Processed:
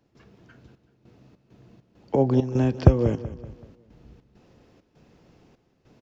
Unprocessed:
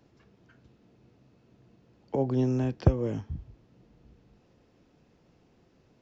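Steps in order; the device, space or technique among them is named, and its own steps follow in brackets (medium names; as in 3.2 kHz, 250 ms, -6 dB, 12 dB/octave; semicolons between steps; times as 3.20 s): trance gate with a delay (trance gate ".xxxx..xx.xx.xxx" 100 bpm -12 dB; feedback delay 190 ms, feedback 45%, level -15 dB); trim +7 dB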